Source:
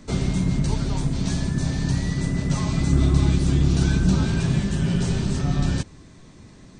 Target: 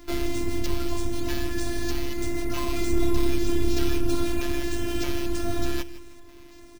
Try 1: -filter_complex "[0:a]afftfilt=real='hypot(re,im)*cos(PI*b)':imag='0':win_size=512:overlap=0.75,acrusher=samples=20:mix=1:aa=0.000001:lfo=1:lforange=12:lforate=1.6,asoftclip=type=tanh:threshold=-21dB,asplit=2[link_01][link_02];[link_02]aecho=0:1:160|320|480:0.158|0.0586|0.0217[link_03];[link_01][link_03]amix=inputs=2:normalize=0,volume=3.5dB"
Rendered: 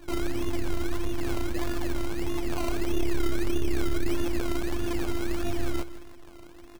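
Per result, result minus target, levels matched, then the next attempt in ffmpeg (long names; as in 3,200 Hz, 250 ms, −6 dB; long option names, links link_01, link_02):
soft clipping: distortion +16 dB; sample-and-hold swept by an LFO: distortion +7 dB
-filter_complex "[0:a]afftfilt=real='hypot(re,im)*cos(PI*b)':imag='0':win_size=512:overlap=0.75,acrusher=samples=20:mix=1:aa=0.000001:lfo=1:lforange=12:lforate=1.6,asoftclip=type=tanh:threshold=-10.5dB,asplit=2[link_01][link_02];[link_02]aecho=0:1:160|320|480:0.158|0.0586|0.0217[link_03];[link_01][link_03]amix=inputs=2:normalize=0,volume=3.5dB"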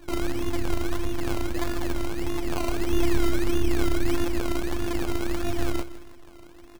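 sample-and-hold swept by an LFO: distortion +7 dB
-filter_complex "[0:a]afftfilt=real='hypot(re,im)*cos(PI*b)':imag='0':win_size=512:overlap=0.75,acrusher=samples=4:mix=1:aa=0.000001:lfo=1:lforange=2.4:lforate=1.6,asoftclip=type=tanh:threshold=-10.5dB,asplit=2[link_01][link_02];[link_02]aecho=0:1:160|320|480:0.158|0.0586|0.0217[link_03];[link_01][link_03]amix=inputs=2:normalize=0,volume=3.5dB"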